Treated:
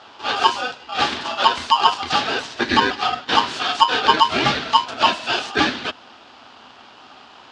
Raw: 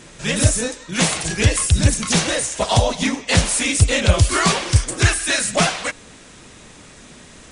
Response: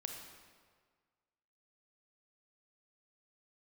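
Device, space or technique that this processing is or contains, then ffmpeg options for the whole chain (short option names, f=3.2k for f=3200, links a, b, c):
ring modulator pedal into a guitar cabinet: -af "aeval=exprs='val(0)*sgn(sin(2*PI*1000*n/s))':c=same,highpass=97,equalizer=f=100:t=q:w=4:g=-3,equalizer=f=170:t=q:w=4:g=-6,equalizer=f=250:t=q:w=4:g=6,equalizer=f=510:t=q:w=4:g=-5,equalizer=f=1.1k:t=q:w=4:g=-3,equalizer=f=2.1k:t=q:w=4:g=-6,lowpass=f=4.2k:w=0.5412,lowpass=f=4.2k:w=1.3066,volume=1dB"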